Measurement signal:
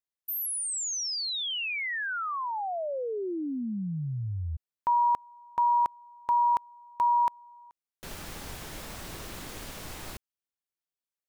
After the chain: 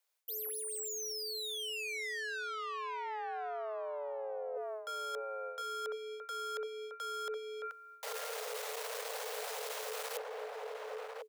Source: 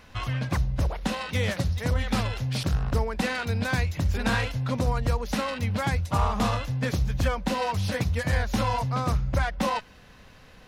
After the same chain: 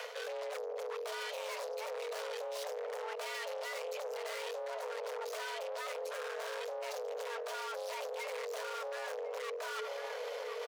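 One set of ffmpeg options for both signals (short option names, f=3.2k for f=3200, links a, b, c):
-filter_complex "[0:a]aeval=exprs='(tanh(100*val(0)+0.65)-tanh(0.65))/100':c=same,afreqshift=430,asplit=2[a][b];[b]adelay=1050,volume=-11dB,highshelf=f=4k:g=-23.6[c];[a][c]amix=inputs=2:normalize=0,areverse,acompressor=threshold=-52dB:ratio=16:attack=10:release=256:knee=1:detection=peak,areverse,volume=15dB"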